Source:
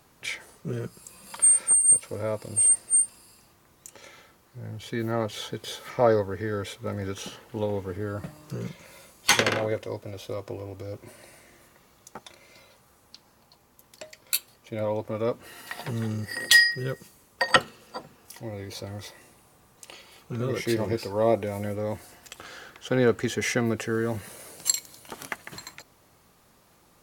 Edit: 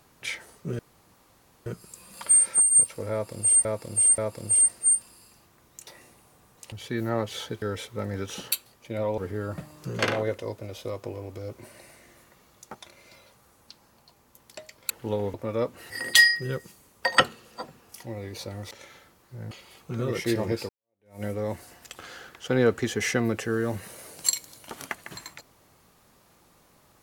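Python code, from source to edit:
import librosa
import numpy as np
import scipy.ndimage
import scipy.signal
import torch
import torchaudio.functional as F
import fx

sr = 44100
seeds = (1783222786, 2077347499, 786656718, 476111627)

y = fx.edit(x, sr, fx.insert_room_tone(at_s=0.79, length_s=0.87),
    fx.repeat(start_s=2.25, length_s=0.53, count=3),
    fx.swap(start_s=3.94, length_s=0.8, other_s=19.07, other_length_s=0.85),
    fx.cut(start_s=5.64, length_s=0.86),
    fx.swap(start_s=7.4, length_s=0.44, other_s=14.34, other_length_s=0.66),
    fx.cut(start_s=8.65, length_s=0.78),
    fx.cut(start_s=15.56, length_s=0.7),
    fx.fade_in_span(start_s=21.1, length_s=0.54, curve='exp'), tone=tone)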